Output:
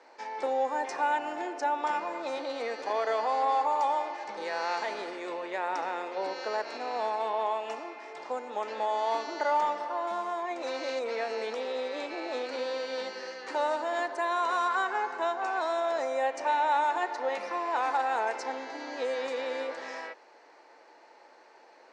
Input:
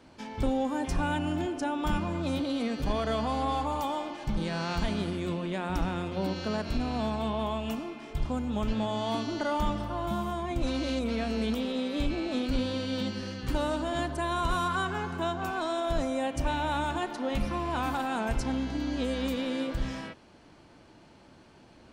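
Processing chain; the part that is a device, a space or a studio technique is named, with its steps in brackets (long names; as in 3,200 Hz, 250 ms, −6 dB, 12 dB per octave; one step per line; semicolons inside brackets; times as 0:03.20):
phone speaker on a table (loudspeaker in its box 420–7,000 Hz, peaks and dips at 480 Hz +5 dB, 860 Hz +7 dB, 1,900 Hz +7 dB, 3,200 Hz −9 dB)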